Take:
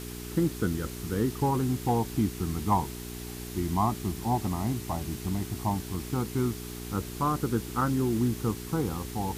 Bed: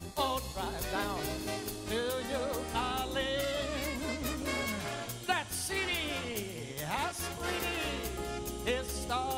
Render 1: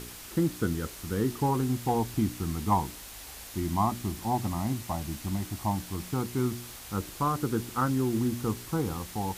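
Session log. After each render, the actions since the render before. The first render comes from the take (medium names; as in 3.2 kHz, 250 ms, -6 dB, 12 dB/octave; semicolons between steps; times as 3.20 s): de-hum 60 Hz, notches 7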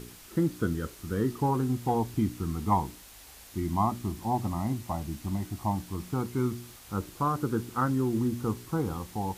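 noise print and reduce 6 dB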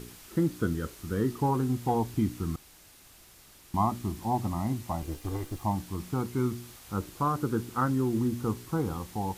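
2.56–3.74 s: room tone; 5.02–5.63 s: comb filter that takes the minimum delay 2.5 ms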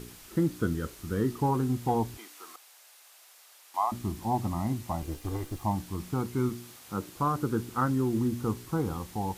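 2.17–3.92 s: high-pass 570 Hz 24 dB/octave; 6.49–7.16 s: high-pass 130 Hz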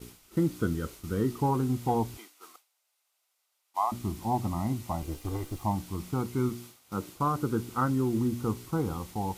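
band-stop 1.7 kHz, Q 9.2; expander -42 dBFS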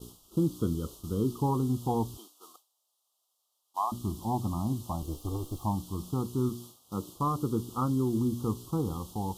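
Chebyshev band-stop 1.2–3.1 kHz, order 3; dynamic bell 650 Hz, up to -4 dB, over -43 dBFS, Q 1.7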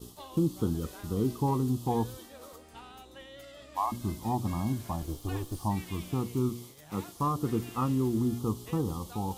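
add bed -15.5 dB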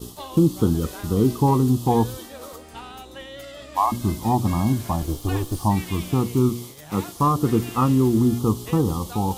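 trim +10 dB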